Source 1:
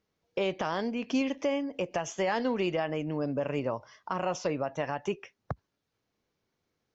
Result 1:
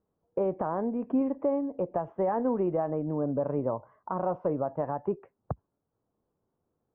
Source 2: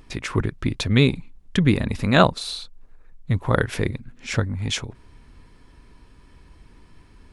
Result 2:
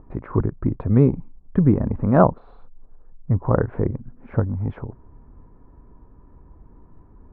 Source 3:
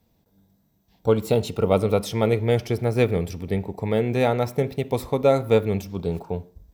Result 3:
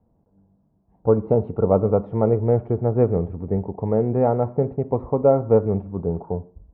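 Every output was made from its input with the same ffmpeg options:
-af "lowpass=f=1100:w=0.5412,lowpass=f=1100:w=1.3066,volume=1.26"

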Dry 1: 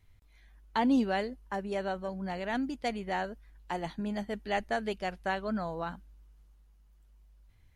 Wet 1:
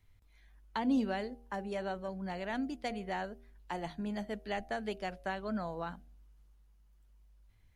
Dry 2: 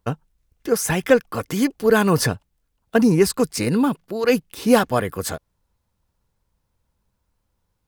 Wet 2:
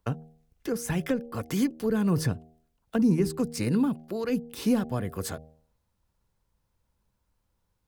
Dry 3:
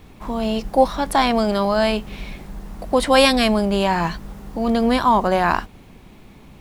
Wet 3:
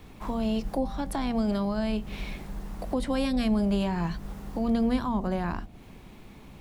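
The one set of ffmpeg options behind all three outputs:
-filter_complex "[0:a]bandreject=f=78.84:t=h:w=4,bandreject=f=157.68:t=h:w=4,bandreject=f=236.52:t=h:w=4,bandreject=f=315.36:t=h:w=4,bandreject=f=394.2:t=h:w=4,bandreject=f=473.04:t=h:w=4,bandreject=f=551.88:t=h:w=4,bandreject=f=630.72:t=h:w=4,bandreject=f=709.56:t=h:w=4,bandreject=f=788.4:t=h:w=4,acrossover=split=290[s0][s1];[s1]acompressor=threshold=0.0355:ratio=8[s2];[s0][s2]amix=inputs=2:normalize=0,volume=0.708"

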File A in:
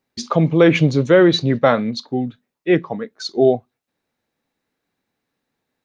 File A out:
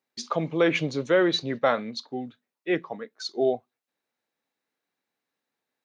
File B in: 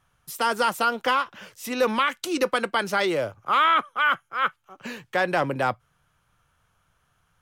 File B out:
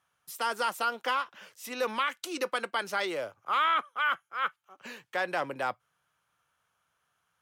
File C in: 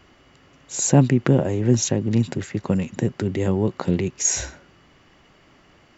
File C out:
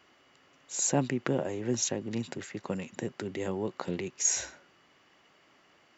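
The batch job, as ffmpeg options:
-af "highpass=f=470:p=1,volume=0.501"

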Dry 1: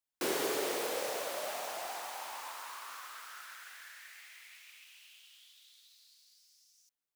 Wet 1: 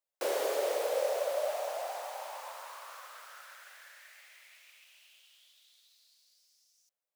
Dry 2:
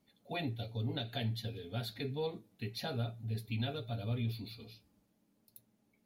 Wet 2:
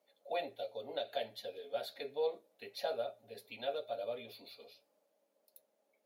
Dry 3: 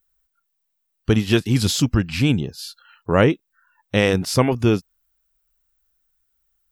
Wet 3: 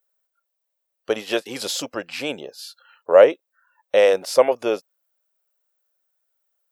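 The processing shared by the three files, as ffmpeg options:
-af "highpass=f=560:t=q:w=5.1,volume=0.668"

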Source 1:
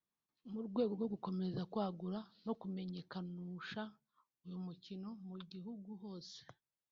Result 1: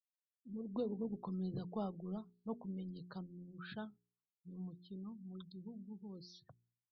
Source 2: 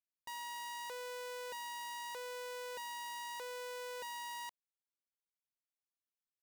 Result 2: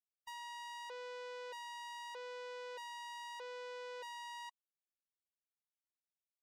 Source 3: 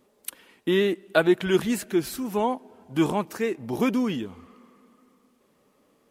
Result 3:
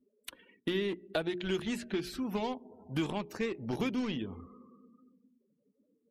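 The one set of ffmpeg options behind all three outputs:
-filter_complex "[0:a]highshelf=f=6300:g=4,asplit=2[s0][s1];[s1]acrusher=bits=3:mix=0:aa=0.000001,volume=0.251[s2];[s0][s2]amix=inputs=2:normalize=0,acrossover=split=880|2100|5100[s3][s4][s5][s6];[s3]acompressor=threshold=0.0282:ratio=4[s7];[s4]acompressor=threshold=0.00398:ratio=4[s8];[s5]acompressor=threshold=0.0112:ratio=4[s9];[s6]acompressor=threshold=0.00251:ratio=4[s10];[s7][s8][s9][s10]amix=inputs=4:normalize=0,lowshelf=f=130:g=8,afftdn=nr=33:nf=-51,bandreject=f=59.35:t=h:w=4,bandreject=f=118.7:t=h:w=4,bandreject=f=178.05:t=h:w=4,bandreject=f=237.4:t=h:w=4,bandreject=f=296.75:t=h:w=4,bandreject=f=356.1:t=h:w=4,bandreject=f=415.45:t=h:w=4,volume=0.75"

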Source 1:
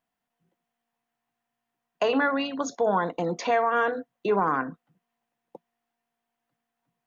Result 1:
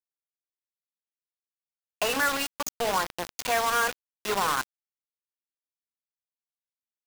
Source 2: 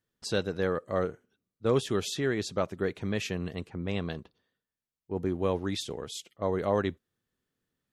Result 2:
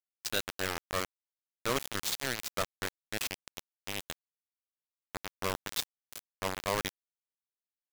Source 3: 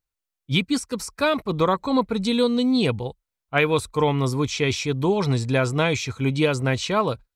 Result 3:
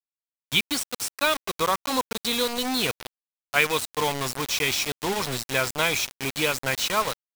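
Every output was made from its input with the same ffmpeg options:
-af "tiltshelf=f=650:g=-7.5,acrusher=bits=3:mix=0:aa=0.000001,volume=0.596"

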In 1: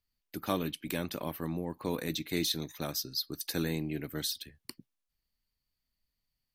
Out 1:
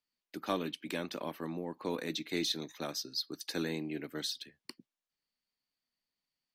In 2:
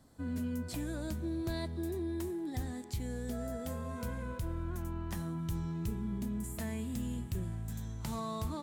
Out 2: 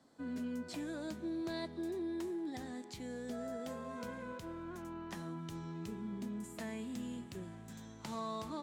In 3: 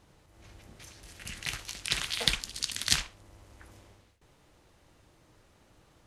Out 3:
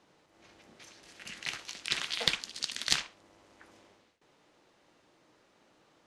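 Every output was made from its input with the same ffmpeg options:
-filter_complex "[0:a]acrossover=split=180 7400:gain=0.0794 1 0.2[s0][s1][s2];[s0][s1][s2]amix=inputs=3:normalize=0,aeval=exprs='0.668*(cos(1*acos(clip(val(0)/0.668,-1,1)))-cos(1*PI/2))+0.15*(cos(2*acos(clip(val(0)/0.668,-1,1)))-cos(2*PI/2))':c=same,volume=0.891"

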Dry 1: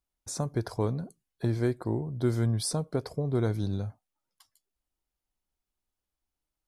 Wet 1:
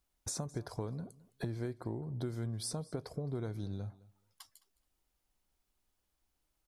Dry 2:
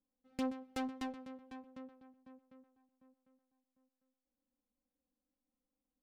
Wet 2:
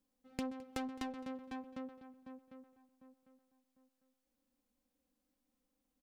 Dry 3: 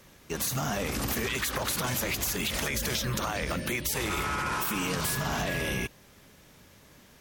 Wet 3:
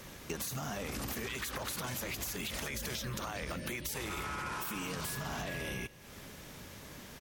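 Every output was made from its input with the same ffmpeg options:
-af "acompressor=threshold=0.00631:ratio=5,aecho=1:1:213|426:0.0891|0.0143,volume=2"

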